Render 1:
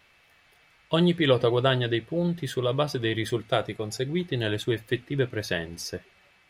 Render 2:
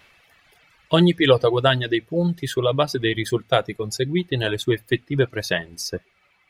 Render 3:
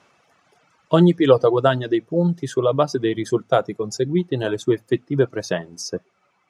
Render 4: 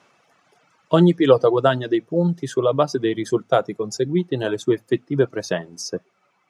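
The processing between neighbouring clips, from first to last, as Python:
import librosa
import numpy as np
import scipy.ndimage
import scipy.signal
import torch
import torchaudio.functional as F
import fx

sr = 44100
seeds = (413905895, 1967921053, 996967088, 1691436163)

y1 = fx.dereverb_blind(x, sr, rt60_s=1.6)
y1 = F.gain(torch.from_numpy(y1), 6.5).numpy()
y2 = scipy.signal.sosfilt(scipy.signal.cheby1(2, 1.0, [170.0, 5900.0], 'bandpass', fs=sr, output='sos'), y1)
y2 = fx.band_shelf(y2, sr, hz=2800.0, db=-11.0, octaves=1.7)
y2 = F.gain(torch.from_numpy(y2), 3.0).numpy()
y3 = scipy.signal.sosfilt(scipy.signal.butter(2, 110.0, 'highpass', fs=sr, output='sos'), y2)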